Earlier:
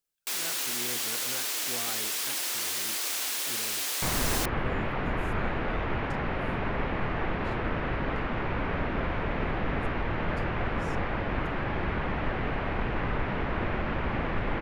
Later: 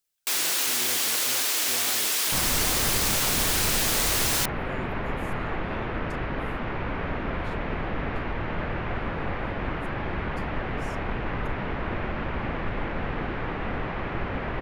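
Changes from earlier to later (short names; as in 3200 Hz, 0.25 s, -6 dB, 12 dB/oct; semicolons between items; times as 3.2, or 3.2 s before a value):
speech: add high shelf 11000 Hz +11 dB; first sound +6.0 dB; second sound: entry -1.70 s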